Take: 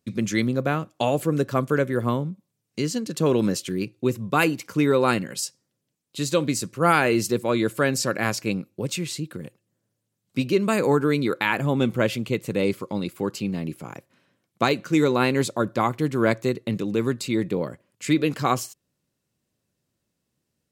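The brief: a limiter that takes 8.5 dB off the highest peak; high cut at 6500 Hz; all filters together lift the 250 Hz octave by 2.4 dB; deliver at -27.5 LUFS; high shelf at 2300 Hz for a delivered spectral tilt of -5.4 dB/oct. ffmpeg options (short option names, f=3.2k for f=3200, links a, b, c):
-af "lowpass=6.5k,equalizer=f=250:t=o:g=3,highshelf=f=2.3k:g=3,volume=-2dB,alimiter=limit=-15.5dB:level=0:latency=1"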